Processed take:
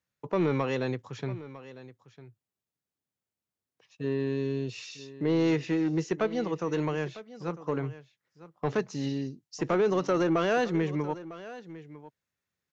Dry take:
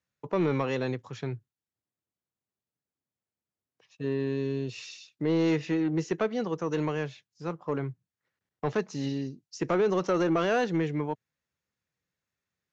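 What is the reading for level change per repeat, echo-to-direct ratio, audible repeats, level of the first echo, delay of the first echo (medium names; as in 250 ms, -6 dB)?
no regular repeats, -16.5 dB, 1, -16.5 dB, 952 ms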